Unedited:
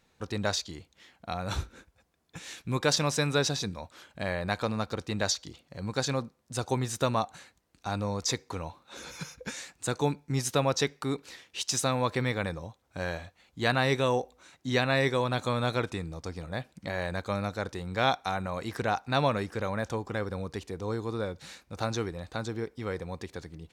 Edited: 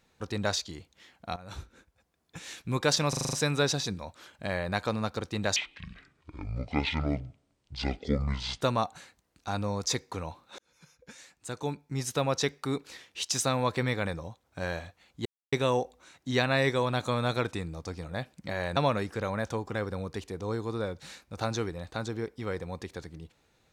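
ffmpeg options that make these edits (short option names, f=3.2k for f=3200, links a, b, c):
-filter_complex "[0:a]asplit=14[a][b][c][d][e][f][g][h][i][j][k][l][m][n];[a]atrim=end=1.36,asetpts=PTS-STARTPTS,afade=t=out:st=1.356:d=0.004:c=hsin:silence=0.177828[o];[b]atrim=start=1.36:end=3.132,asetpts=PTS-STARTPTS,afade=t=in:d=1.05:silence=0.177828[p];[c]atrim=start=3.088:end=3.132[q];[d]atrim=start=3.088:end=3.132[r];[e]atrim=start=3.088:end=3.132[s];[f]atrim=start=3.088:end=3.132[t];[g]atrim=start=3.088:end=3.132[u];[h]atrim=start=3.088:end=5.324[v];[i]atrim=start=5.32:end=7,asetpts=PTS-STARTPTS,asetrate=24255,aresample=44100,atrim=end_sample=134705,asetpts=PTS-STARTPTS[w];[j]atrim=start=6.996:end=8.97,asetpts=PTS-STARTPTS,afade=t=out:st=1.97:d=0.004:c=hsin[x];[k]atrim=start=8.97:end=13.64,asetpts=PTS-STARTPTS,afade=t=in:d=2.07,afade=t=out:st=4.666:d=0.004:c=hsin[y];[l]atrim=start=13.64:end=13.91,asetpts=PTS-STARTPTS,volume=0[z];[m]atrim=start=13.91:end=17.152,asetpts=PTS-STARTPTS,afade=t=in:d=0.004:c=hsin[aa];[n]atrim=start=19.158[ab];[o][p]concat=n=2:v=0:a=1[ac];[ac][q]acrossfade=d=0.004:c1=hsin:c2=hsin[ad];[ad][r]acrossfade=d=0.004:c1=hsin:c2=hsin[ae];[ae][s]acrossfade=d=0.004:c1=hsin:c2=hsin[af];[af][t]acrossfade=d=0.004:c1=hsin:c2=hsin[ag];[ag][u]acrossfade=d=0.004:c1=hsin:c2=hsin[ah];[ah][v]acrossfade=d=0.004:c1=hsin:c2=hsin[ai];[ai][w]acrossfade=d=0.004:c1=hsin:c2=hsin[aj];[x][y][z][aa]concat=n=4:v=0:a=1[ak];[aj][ak]acrossfade=d=0.004:c1=hsin:c2=hsin[al];[al][ab]acrossfade=d=0.004:c1=hsin:c2=hsin"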